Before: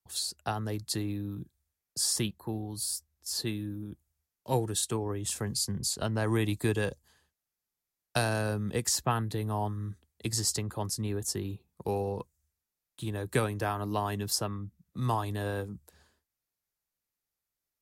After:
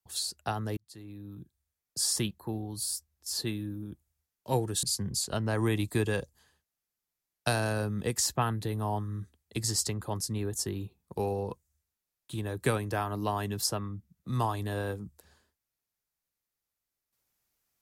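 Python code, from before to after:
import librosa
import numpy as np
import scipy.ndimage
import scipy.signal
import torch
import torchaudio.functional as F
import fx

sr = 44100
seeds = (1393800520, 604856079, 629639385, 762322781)

y = fx.edit(x, sr, fx.fade_in_span(start_s=0.77, length_s=1.22),
    fx.cut(start_s=4.83, length_s=0.69), tone=tone)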